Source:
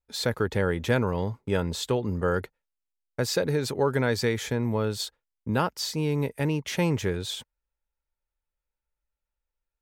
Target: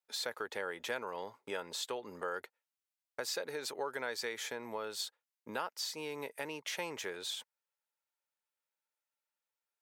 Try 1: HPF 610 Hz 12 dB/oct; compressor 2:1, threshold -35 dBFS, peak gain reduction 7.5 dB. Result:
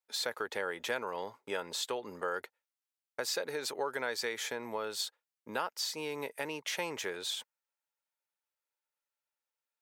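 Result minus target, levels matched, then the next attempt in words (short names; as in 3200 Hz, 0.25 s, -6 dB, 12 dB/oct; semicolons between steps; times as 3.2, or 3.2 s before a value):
compressor: peak gain reduction -3 dB
HPF 610 Hz 12 dB/oct; compressor 2:1, threshold -41.5 dBFS, peak gain reduction 11 dB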